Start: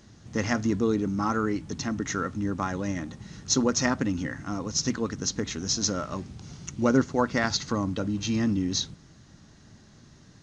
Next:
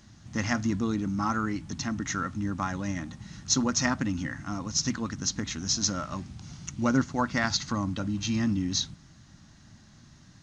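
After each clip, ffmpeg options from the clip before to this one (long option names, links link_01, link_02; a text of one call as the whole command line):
ffmpeg -i in.wav -af "equalizer=frequency=440:width_type=o:width=0.63:gain=-12.5" out.wav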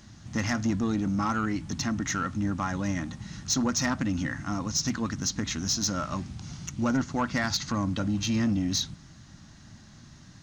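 ffmpeg -i in.wav -filter_complex "[0:a]asplit=2[link_01][link_02];[link_02]alimiter=limit=-21dB:level=0:latency=1:release=180,volume=1dB[link_03];[link_01][link_03]amix=inputs=2:normalize=0,asoftclip=type=tanh:threshold=-15.5dB,volume=-3dB" out.wav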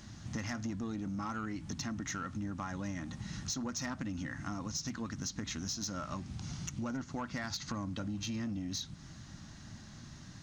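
ffmpeg -i in.wav -af "acompressor=threshold=-37dB:ratio=5" out.wav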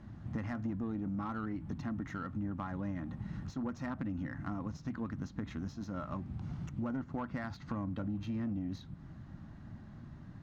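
ffmpeg -i in.wav -af "aexciter=amount=4.7:drive=7.9:freq=8400,adynamicsmooth=sensitivity=1.5:basefreq=1400,volume=1.5dB" out.wav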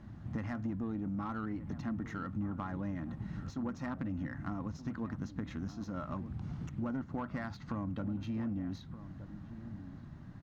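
ffmpeg -i in.wav -filter_complex "[0:a]asplit=2[link_01][link_02];[link_02]adelay=1224,volume=-13dB,highshelf=frequency=4000:gain=-27.6[link_03];[link_01][link_03]amix=inputs=2:normalize=0" out.wav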